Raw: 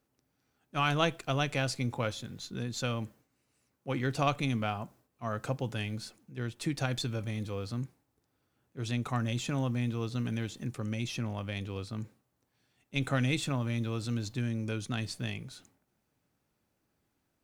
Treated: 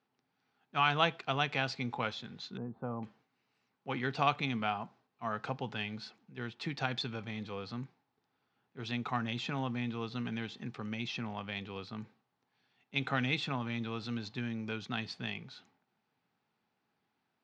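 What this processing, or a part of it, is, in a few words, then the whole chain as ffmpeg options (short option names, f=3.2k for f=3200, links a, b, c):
kitchen radio: -filter_complex "[0:a]asettb=1/sr,asplit=3[a][b][c];[a]atrim=end=2.574[d];[b]atrim=start=2.57:end=3.03,asetpts=PTS-STARTPTS,afade=t=in:d=0.004:c=qsin,afade=t=out:st=0.456:d=0.004:c=qsin,lowpass=f=1k:w=0.5412,lowpass=f=1k:w=1.3066[e];[c]atrim=start=3.026[f];[d][e]acrossfade=d=0.004:c1=hsin:c2=qsin[g];[g][f]acrossfade=d=0.004:c1=qsin:c2=hsin,highpass=200,equalizer=f=310:t=q:w=4:g=-9,equalizer=f=560:t=q:w=4:g=-9,equalizer=f=830:t=q:w=4:g=4,lowpass=f=4.5k:w=0.5412,lowpass=f=4.5k:w=1.3066,volume=1dB"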